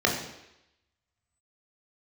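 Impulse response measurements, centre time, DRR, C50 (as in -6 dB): 34 ms, -1.0 dB, 5.5 dB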